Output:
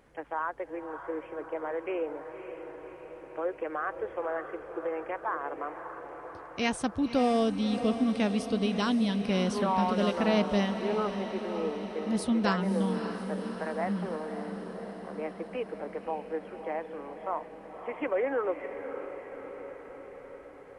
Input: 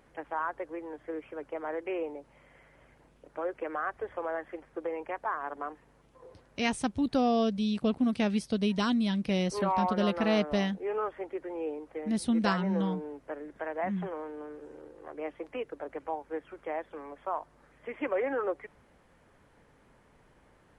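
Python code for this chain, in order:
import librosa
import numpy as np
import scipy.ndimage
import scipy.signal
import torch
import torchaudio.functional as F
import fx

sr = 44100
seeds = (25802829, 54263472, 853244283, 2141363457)

p1 = fx.peak_eq(x, sr, hz=490.0, db=2.5, octaves=0.3)
y = p1 + fx.echo_diffused(p1, sr, ms=573, feedback_pct=67, wet_db=-9.5, dry=0)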